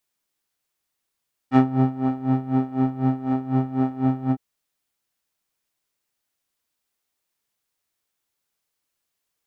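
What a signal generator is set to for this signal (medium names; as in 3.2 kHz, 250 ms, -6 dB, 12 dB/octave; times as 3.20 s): synth patch with tremolo C4, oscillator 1 square, oscillator 2 saw, interval -12 st, detune 22 cents, oscillator 2 level -6 dB, sub -5.5 dB, noise -6.5 dB, filter lowpass, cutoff 650 Hz, Q 0.79, filter envelope 1.5 oct, filter decay 0.13 s, filter sustain 20%, attack 53 ms, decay 0.34 s, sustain -6.5 dB, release 0.06 s, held 2.80 s, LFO 4 Hz, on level 16.5 dB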